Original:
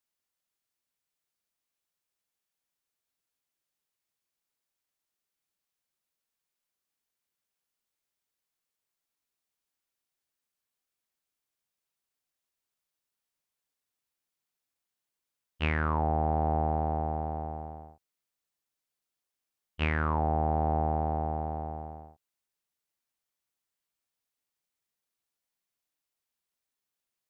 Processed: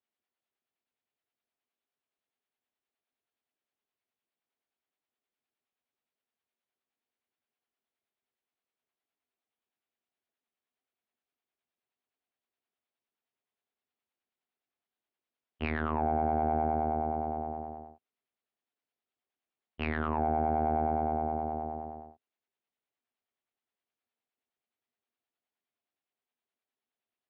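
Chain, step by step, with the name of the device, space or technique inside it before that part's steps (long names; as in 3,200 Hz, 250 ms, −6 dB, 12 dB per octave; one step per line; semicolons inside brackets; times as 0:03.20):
guitar amplifier with harmonic tremolo (two-band tremolo in antiphase 9.6 Hz, depth 50%, crossover 620 Hz; soft clipping −20.5 dBFS, distortion −19 dB; loudspeaker in its box 83–3,600 Hz, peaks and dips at 160 Hz −7 dB, 240 Hz +7 dB, 400 Hz +6 dB, 710 Hz +6 dB)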